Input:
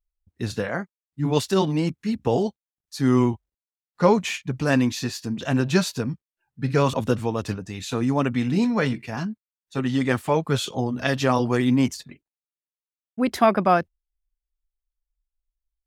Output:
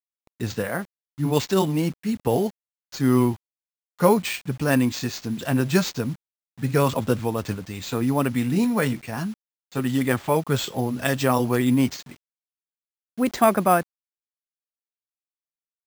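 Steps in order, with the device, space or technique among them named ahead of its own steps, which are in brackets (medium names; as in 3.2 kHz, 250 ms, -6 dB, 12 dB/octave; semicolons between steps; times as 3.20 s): early 8-bit sampler (sample-rate reducer 11 kHz, jitter 0%; bit crusher 8-bit)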